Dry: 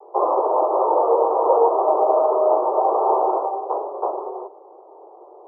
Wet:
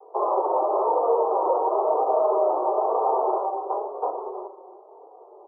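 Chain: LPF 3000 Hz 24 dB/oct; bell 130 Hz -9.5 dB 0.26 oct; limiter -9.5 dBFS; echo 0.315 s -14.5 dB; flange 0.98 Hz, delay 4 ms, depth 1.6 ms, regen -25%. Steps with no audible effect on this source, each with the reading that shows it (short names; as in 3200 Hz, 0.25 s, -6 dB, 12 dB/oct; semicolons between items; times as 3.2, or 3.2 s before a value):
LPF 3000 Hz: input band ends at 1300 Hz; bell 130 Hz: input band starts at 290 Hz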